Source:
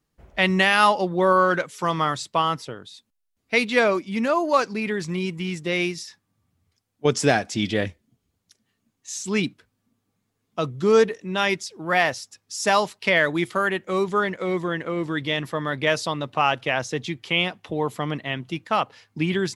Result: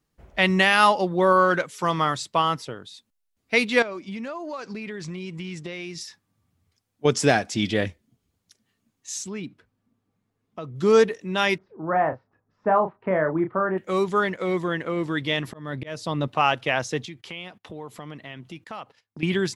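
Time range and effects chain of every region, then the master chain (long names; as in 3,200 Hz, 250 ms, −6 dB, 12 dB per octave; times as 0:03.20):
0:03.82–0:06.01: low-pass filter 7,600 Hz + downward compressor 8 to 1, threshold −30 dBFS
0:09.24–0:10.76: high-shelf EQ 3,200 Hz −11.5 dB + downward compressor 2.5 to 1, threshold −34 dBFS
0:11.58–0:13.78: low-pass filter 1,300 Hz 24 dB per octave + double-tracking delay 32 ms −7.5 dB
0:15.47–0:16.28: low-shelf EQ 470 Hz +9 dB + volume swells 497 ms
0:17.05–0:19.23: noise gate −48 dBFS, range −24 dB + downward compressor 2.5 to 1, threshold −39 dBFS
whole clip: no processing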